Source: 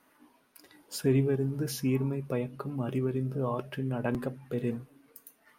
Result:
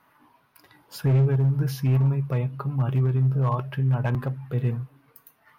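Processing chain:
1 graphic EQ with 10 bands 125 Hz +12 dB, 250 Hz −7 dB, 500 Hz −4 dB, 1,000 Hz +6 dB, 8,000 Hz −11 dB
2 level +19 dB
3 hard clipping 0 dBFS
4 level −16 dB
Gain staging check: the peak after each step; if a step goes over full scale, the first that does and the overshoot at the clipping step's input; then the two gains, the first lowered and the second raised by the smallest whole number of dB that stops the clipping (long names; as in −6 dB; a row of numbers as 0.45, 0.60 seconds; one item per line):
−11.0, +8.0, 0.0, −16.0 dBFS
step 2, 8.0 dB
step 2 +11 dB, step 4 −8 dB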